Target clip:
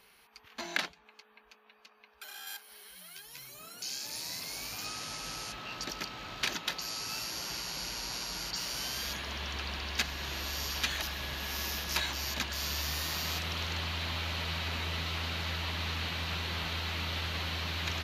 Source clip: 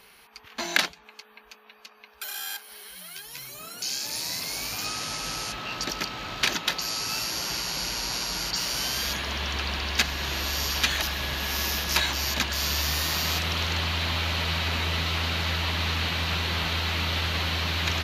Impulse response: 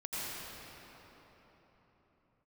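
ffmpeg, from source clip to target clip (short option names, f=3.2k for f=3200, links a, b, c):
-filter_complex "[0:a]asettb=1/sr,asplit=3[a][b][c];[a]atrim=end=0.614[d];[b]atrim=start=0.61:end=2.47,asetpts=PTS-STARTPTS,afade=t=in:d=0.004:c=qsin,afade=t=out:st=1.856:d=0.004:c=qsin,highshelf=f=5.4k:g=-7.5[e];[c]atrim=start=2.466[f];[d][e]acrossfade=d=0.004:c1=hsin:c2=qsin[g];[g][f]acrossfade=d=0.004:c1=qsin:c2=hsin,volume=-8dB"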